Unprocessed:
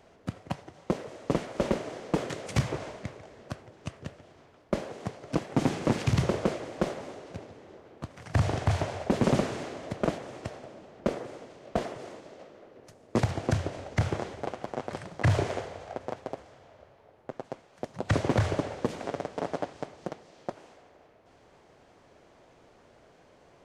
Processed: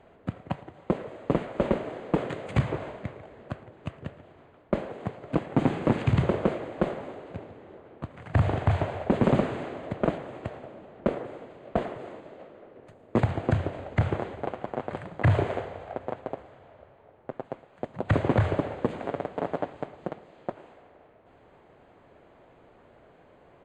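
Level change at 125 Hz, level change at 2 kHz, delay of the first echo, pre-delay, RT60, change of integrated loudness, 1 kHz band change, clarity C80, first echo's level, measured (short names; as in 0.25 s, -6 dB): +2.5 dB, +1.0 dB, 0.112 s, none, none, +2.5 dB, +2.0 dB, none, -22.0 dB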